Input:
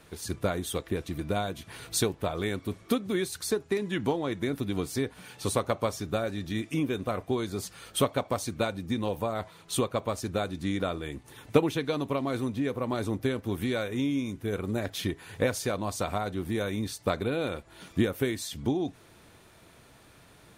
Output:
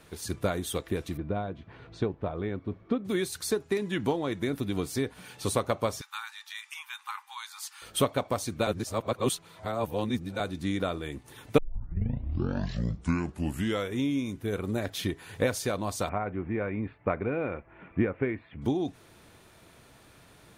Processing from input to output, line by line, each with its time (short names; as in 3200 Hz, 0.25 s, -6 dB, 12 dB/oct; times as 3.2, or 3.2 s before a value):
1.17–3.05 tape spacing loss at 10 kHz 42 dB
6.01–7.82 brick-wall FIR high-pass 790 Hz
8.67–10.4 reverse
11.58 tape start 2.40 s
16.09–18.62 elliptic low-pass 2400 Hz, stop band 60 dB